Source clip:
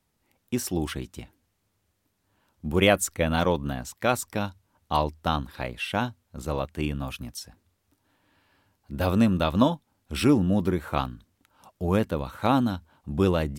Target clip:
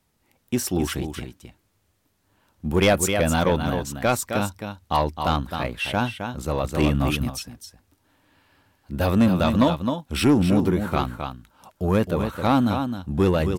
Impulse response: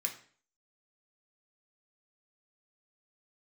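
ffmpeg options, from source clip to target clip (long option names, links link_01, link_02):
-filter_complex "[0:a]aecho=1:1:263:0.376,asettb=1/sr,asplit=3[link_01][link_02][link_03];[link_01]atrim=end=6.644[link_04];[link_02]atrim=start=6.64:end=7.3,asetpts=PTS-STARTPTS,afade=type=in:duration=0.004:curve=qsin,afade=type=out:start_time=0.656:duration=0.004:curve=qsin,acontrast=49[link_05];[link_03]atrim=start=7.296[link_06];[link_04][link_05]acrossfade=duration=0.004:curve1=hsin:curve2=qsin[link_07];[link_07][link_06]acrossfade=duration=0.004:curve1=qsin:curve2=hsin,asoftclip=type=tanh:threshold=-14.5dB,volume=4.5dB"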